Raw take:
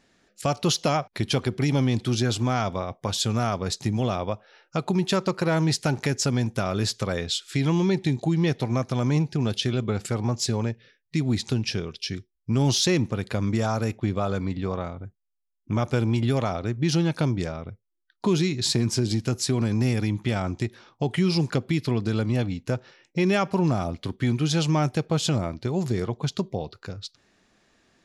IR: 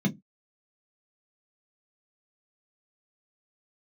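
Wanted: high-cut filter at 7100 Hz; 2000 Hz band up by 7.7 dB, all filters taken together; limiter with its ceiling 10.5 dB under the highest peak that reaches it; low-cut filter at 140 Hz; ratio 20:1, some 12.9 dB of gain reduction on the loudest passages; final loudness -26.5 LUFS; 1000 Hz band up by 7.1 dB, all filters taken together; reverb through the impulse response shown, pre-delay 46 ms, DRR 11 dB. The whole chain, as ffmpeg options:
-filter_complex "[0:a]highpass=140,lowpass=7.1k,equalizer=f=1k:t=o:g=7.5,equalizer=f=2k:t=o:g=7.5,acompressor=threshold=-27dB:ratio=20,alimiter=limit=-21dB:level=0:latency=1,asplit=2[a][b];[1:a]atrim=start_sample=2205,adelay=46[c];[b][c]afir=irnorm=-1:irlink=0,volume=-17dB[d];[a][d]amix=inputs=2:normalize=0,volume=1.5dB"

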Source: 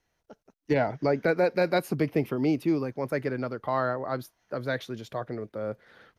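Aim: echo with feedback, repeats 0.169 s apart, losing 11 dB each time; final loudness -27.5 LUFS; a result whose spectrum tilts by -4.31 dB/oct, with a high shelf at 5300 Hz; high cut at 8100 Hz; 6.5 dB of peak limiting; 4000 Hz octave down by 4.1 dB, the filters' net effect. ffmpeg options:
-af "lowpass=8.1k,equalizer=f=4k:t=o:g=-7.5,highshelf=f=5.3k:g=7.5,alimiter=limit=-21dB:level=0:latency=1,aecho=1:1:169|338|507:0.282|0.0789|0.0221,volume=4.5dB"

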